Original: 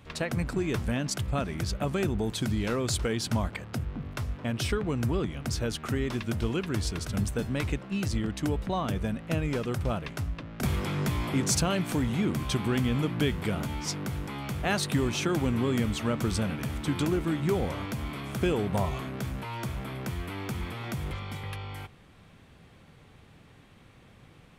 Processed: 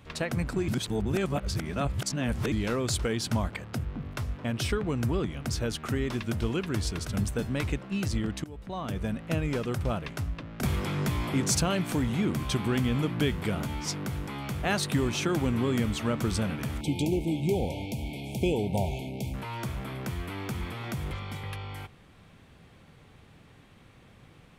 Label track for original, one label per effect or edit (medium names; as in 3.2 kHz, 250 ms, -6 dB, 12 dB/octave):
0.680000	2.520000	reverse
8.440000	9.130000	fade in, from -22 dB
16.810000	19.340000	brick-wall FIR band-stop 940–2100 Hz